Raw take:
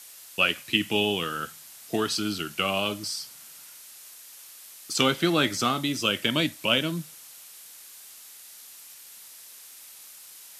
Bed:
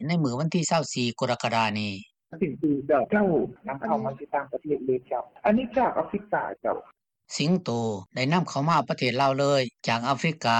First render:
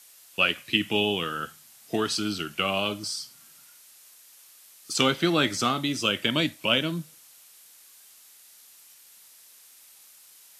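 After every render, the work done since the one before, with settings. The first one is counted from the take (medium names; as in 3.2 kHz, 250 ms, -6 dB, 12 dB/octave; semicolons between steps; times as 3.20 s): noise print and reduce 6 dB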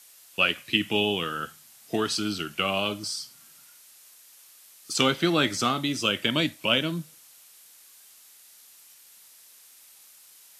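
no audible change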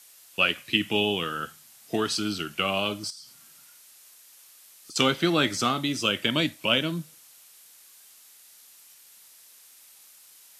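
3.10–4.96 s: compression 5:1, threshold -42 dBFS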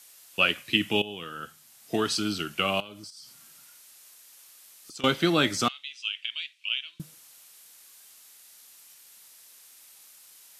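1.02–1.99 s: fade in, from -15.5 dB; 2.80–5.04 s: compression 4:1, threshold -42 dBFS; 5.68–7.00 s: ladder band-pass 3.1 kHz, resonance 55%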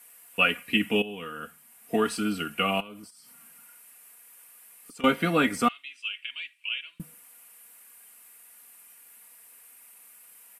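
high-order bell 4.8 kHz -13 dB 1.3 oct; comb 4.2 ms, depth 72%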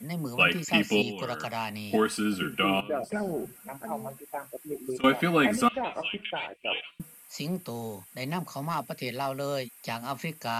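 add bed -9 dB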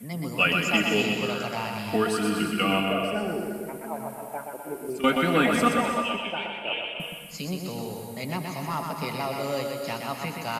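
feedback delay 124 ms, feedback 47%, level -4.5 dB; gated-style reverb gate 370 ms rising, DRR 6 dB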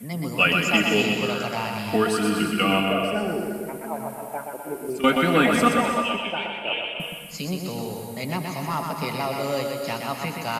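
trim +3 dB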